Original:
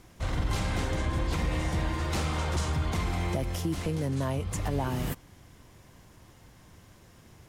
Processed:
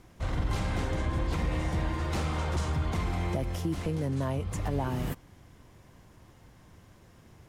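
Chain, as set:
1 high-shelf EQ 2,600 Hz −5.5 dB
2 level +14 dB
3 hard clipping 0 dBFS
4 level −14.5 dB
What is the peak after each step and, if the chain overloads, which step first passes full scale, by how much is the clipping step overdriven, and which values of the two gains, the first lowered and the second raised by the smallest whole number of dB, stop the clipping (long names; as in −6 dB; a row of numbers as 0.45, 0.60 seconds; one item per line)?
−16.5, −2.5, −2.5, −17.0 dBFS
no step passes full scale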